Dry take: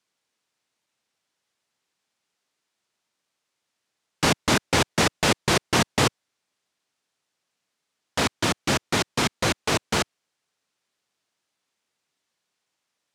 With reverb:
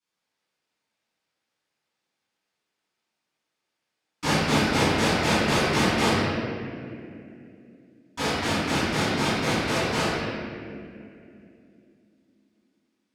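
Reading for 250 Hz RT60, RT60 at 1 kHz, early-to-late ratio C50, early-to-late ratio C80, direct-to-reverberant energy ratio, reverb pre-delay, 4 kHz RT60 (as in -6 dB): 4.0 s, 2.0 s, -4.0 dB, -2.0 dB, -16.5 dB, 3 ms, 1.5 s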